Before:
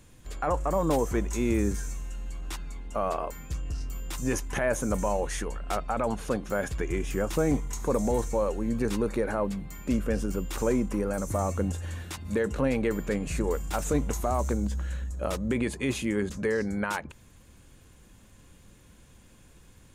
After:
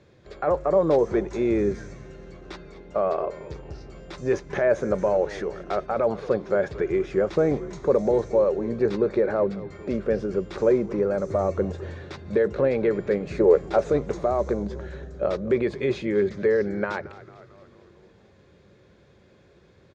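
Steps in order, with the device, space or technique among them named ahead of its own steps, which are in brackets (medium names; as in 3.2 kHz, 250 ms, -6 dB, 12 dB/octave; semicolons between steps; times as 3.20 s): frequency-shifting delay pedal into a guitar cabinet (frequency-shifting echo 224 ms, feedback 60%, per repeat -110 Hz, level -17 dB; cabinet simulation 99–4500 Hz, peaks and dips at 260 Hz -7 dB, 390 Hz +10 dB, 580 Hz +7 dB, 960 Hz -4 dB, 2.9 kHz -9 dB); 13.35–13.91 s: dynamic bell 540 Hz, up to +7 dB, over -35 dBFS, Q 0.73; trim +1.5 dB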